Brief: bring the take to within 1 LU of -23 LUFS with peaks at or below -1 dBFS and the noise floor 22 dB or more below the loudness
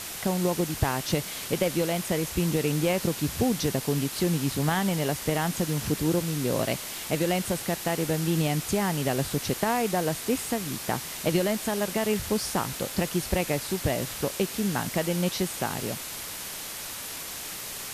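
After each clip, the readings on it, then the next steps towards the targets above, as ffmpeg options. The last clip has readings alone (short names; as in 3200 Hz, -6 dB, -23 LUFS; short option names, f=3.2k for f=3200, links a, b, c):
noise floor -37 dBFS; noise floor target -50 dBFS; loudness -27.5 LUFS; peak -9.0 dBFS; loudness target -23.0 LUFS
-> -af "afftdn=nr=13:nf=-37"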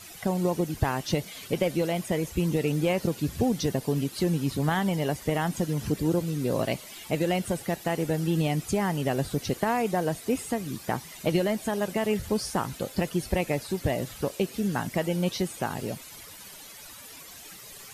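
noise floor -46 dBFS; noise floor target -51 dBFS
-> -af "afftdn=nr=6:nf=-46"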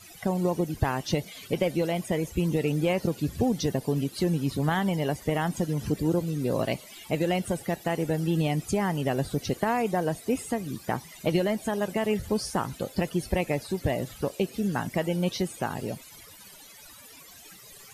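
noise floor -49 dBFS; noise floor target -51 dBFS
-> -af "afftdn=nr=6:nf=-49"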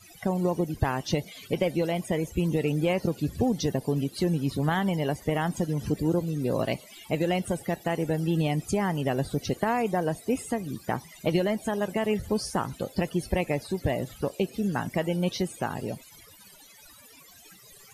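noise floor -52 dBFS; loudness -28.5 LUFS; peak -9.5 dBFS; loudness target -23.0 LUFS
-> -af "volume=5.5dB"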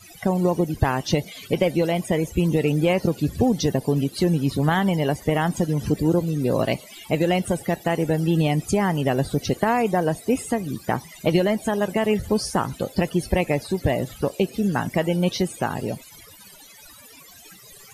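loudness -23.0 LUFS; peak -4.0 dBFS; noise floor -47 dBFS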